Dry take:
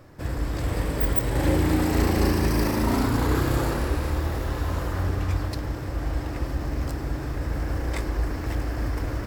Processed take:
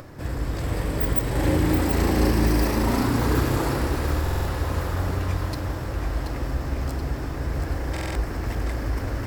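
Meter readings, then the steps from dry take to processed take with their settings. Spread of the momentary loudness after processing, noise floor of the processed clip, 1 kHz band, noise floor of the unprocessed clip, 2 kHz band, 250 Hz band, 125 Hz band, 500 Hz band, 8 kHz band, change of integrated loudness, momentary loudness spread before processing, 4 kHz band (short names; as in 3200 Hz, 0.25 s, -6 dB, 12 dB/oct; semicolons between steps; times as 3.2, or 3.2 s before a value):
8 LU, -31 dBFS, +1.0 dB, -32 dBFS, +1.0 dB, +1.0 dB, +1.0 dB, +1.0 dB, +1.0 dB, +1.0 dB, 8 LU, +1.0 dB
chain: upward compressor, threshold -35 dBFS; on a send: split-band echo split 440 Hz, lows 0.162 s, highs 0.729 s, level -6.5 dB; on the sum: stuck buffer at 4.22/7.92, samples 2048, times 4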